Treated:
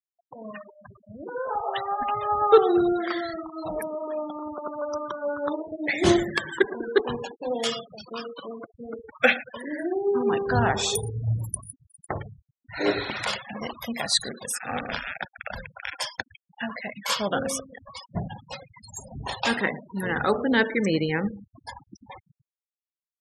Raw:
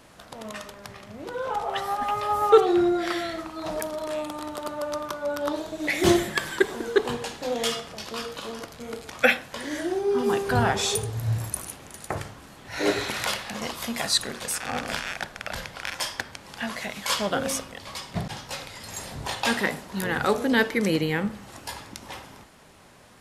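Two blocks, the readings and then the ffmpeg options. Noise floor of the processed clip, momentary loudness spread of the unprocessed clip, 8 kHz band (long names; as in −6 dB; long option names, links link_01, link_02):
below −85 dBFS, 16 LU, −2.5 dB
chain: -af "aecho=1:1:113|226|339|452:0.112|0.0505|0.0227|0.0102,afftfilt=real='re*gte(hypot(re,im),0.0355)':imag='im*gte(hypot(re,im),0.0355)':win_size=1024:overlap=0.75"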